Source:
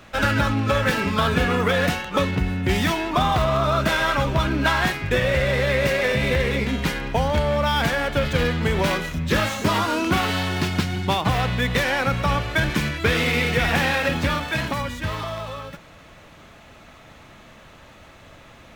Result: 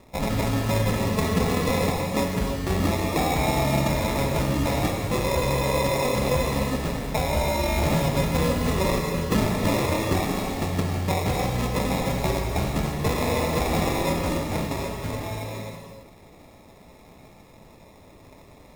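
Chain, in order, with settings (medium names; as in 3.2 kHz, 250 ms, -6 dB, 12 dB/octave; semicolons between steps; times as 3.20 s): 7.68–9.94 s: resonant high shelf 2.8 kHz -14 dB, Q 3; sample-and-hold 29×; gated-style reverb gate 360 ms flat, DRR 1.5 dB; trim -5 dB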